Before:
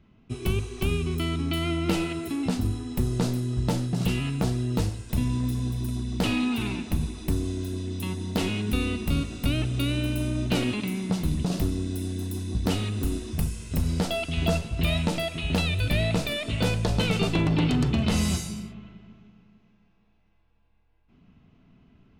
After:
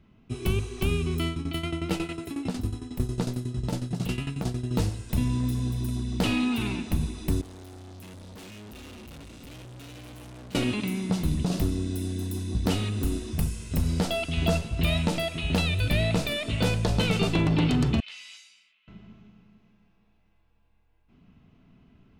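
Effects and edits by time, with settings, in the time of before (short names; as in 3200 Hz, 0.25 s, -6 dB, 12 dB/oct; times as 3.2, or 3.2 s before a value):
1.27–4.71 tremolo saw down 11 Hz, depth 80%
7.41–10.55 tube stage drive 43 dB, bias 0.65
18–18.88 ladder band-pass 3000 Hz, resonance 40%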